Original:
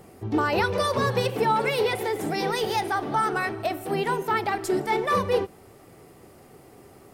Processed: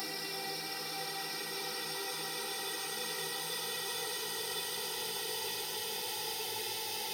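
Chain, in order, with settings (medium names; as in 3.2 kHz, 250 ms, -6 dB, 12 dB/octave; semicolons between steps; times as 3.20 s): Paulstretch 22×, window 0.50 s, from 2.39 s; pre-emphasis filter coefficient 0.9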